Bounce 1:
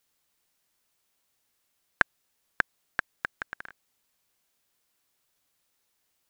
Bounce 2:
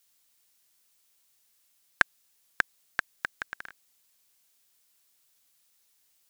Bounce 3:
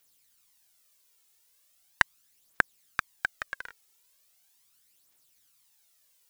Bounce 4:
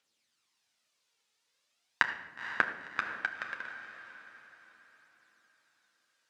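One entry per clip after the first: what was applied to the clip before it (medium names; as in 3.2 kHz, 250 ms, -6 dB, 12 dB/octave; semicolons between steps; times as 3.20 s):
treble shelf 2.5 kHz +11 dB; trim -3 dB
phaser 0.39 Hz, delay 2.4 ms, feedback 53%
band-pass 170–4900 Hz; echo that smears into a reverb 492 ms, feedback 42%, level -9.5 dB; on a send at -4 dB: reverberation, pre-delay 9 ms; on the sum: trim -3.5 dB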